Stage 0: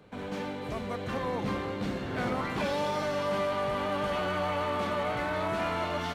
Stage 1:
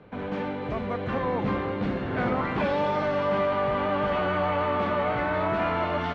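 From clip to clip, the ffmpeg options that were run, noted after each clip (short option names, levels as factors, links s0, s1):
-af "lowpass=2500,volume=1.78"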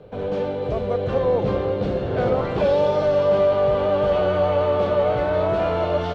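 -af "equalizer=f=250:t=o:w=1:g=-11,equalizer=f=500:t=o:w=1:g=7,equalizer=f=1000:t=o:w=1:g=-8,equalizer=f=2000:t=o:w=1:g=-12,volume=2.51"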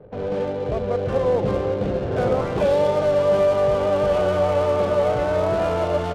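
-af "adynamicsmooth=sensitivity=7:basefreq=760"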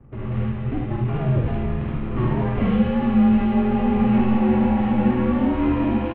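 -af "bandreject=f=540:w=12,highpass=f=290:t=q:w=0.5412,highpass=f=290:t=q:w=1.307,lowpass=f=3300:t=q:w=0.5176,lowpass=f=3300:t=q:w=0.7071,lowpass=f=3300:t=q:w=1.932,afreqshift=-370,aecho=1:1:51|75:0.562|0.596"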